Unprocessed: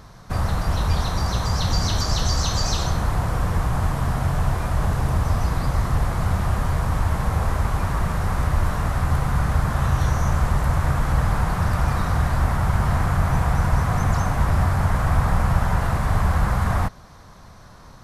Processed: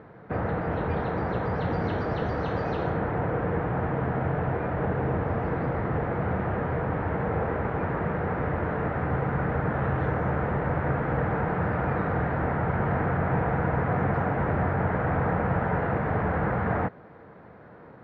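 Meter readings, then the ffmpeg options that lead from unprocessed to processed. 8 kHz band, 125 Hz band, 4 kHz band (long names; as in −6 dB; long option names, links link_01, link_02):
below −35 dB, −7.0 dB, below −20 dB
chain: -af "highpass=150,equalizer=frequency=320:width_type=q:width=4:gain=5,equalizer=frequency=460:width_type=q:width=4:gain=9,equalizer=frequency=1100:width_type=q:width=4:gain=-8,lowpass=frequency=2100:width=0.5412,lowpass=frequency=2100:width=1.3066"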